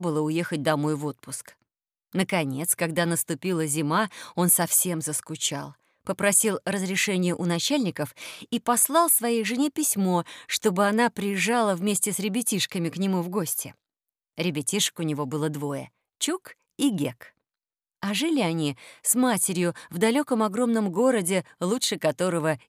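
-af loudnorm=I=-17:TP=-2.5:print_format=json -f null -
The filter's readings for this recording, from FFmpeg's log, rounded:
"input_i" : "-24.7",
"input_tp" : "-7.8",
"input_lra" : "4.8",
"input_thresh" : "-35.0",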